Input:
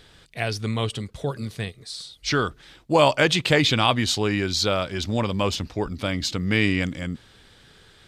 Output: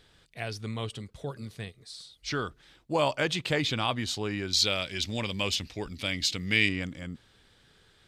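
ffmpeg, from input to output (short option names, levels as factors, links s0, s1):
-filter_complex "[0:a]asettb=1/sr,asplit=3[s0][s1][s2];[s0]atrim=end=4.534[s3];[s1]atrim=start=4.53:end=6.69,asetpts=PTS-STARTPTS,afade=t=in:d=0.004:c=qsin,afade=t=out:st=2.156:d=0.004:c=qsin,highshelf=f=1700:t=q:w=1.5:g=8[s4];[s2]atrim=start=6.686[s5];[s3][s4]acrossfade=d=0.004:c1=hsin:c2=qsin[s6];[s6][s5]acrossfade=d=0.004:c1=qsin:c2=hsin,volume=0.355"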